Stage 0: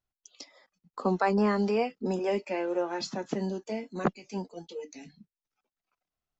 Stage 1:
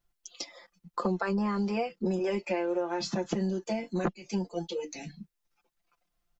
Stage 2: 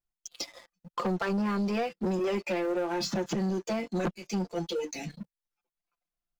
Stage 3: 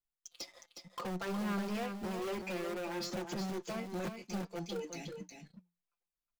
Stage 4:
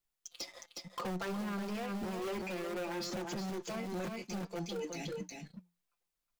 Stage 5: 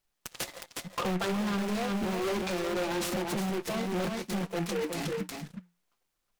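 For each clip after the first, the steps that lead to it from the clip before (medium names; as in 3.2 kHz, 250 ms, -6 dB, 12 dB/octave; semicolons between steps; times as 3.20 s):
bass shelf 71 Hz +8.5 dB; comb 5.8 ms, depth 81%; compression 6:1, threshold -32 dBFS, peak gain reduction 13.5 dB; trim +5 dB
waveshaping leveller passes 3; trim -7.5 dB
in parallel at -9 dB: integer overflow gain 26 dB; on the sum: flange 1.4 Hz, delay 4.6 ms, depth 1.2 ms, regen +88%; delay 363 ms -7 dB; trim -6 dB
peak limiter -37.5 dBFS, peak gain reduction 9.5 dB; trim +5.5 dB
delay time shaken by noise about 1.6 kHz, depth 0.078 ms; trim +7.5 dB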